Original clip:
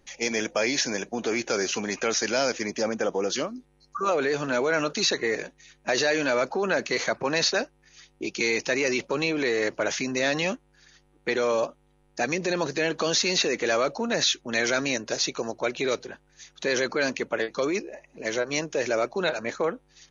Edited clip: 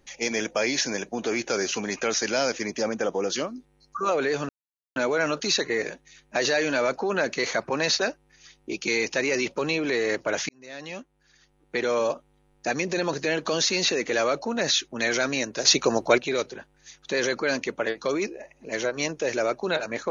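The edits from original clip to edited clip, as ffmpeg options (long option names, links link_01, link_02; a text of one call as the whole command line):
ffmpeg -i in.wav -filter_complex "[0:a]asplit=5[link_01][link_02][link_03][link_04][link_05];[link_01]atrim=end=4.49,asetpts=PTS-STARTPTS,afade=type=out:start_time=4.486:duration=0.004:curve=hsin,apad=pad_dur=0.47[link_06];[link_02]atrim=start=4.49:end=10.02,asetpts=PTS-STARTPTS,afade=type=in:duration=0.004:curve=hsin,afade=type=out:start_time=5.526:duration=0.004:curve=hsin[link_07];[link_03]atrim=start=10.02:end=15.182,asetpts=PTS-STARTPTS,afade=type=in:duration=1.43[link_08];[link_04]atrim=start=15.178:end=15.712,asetpts=PTS-STARTPTS,volume=8dB[link_09];[link_05]atrim=start=15.708[link_10];[link_06][link_07][link_08]concat=n=3:v=0:a=1[link_11];[link_11][link_09]acrossfade=duration=0.004:curve1=hsin:curve2=hsin[link_12];[link_12][link_10]acrossfade=duration=0.004:curve1=hsin:curve2=hsin" out.wav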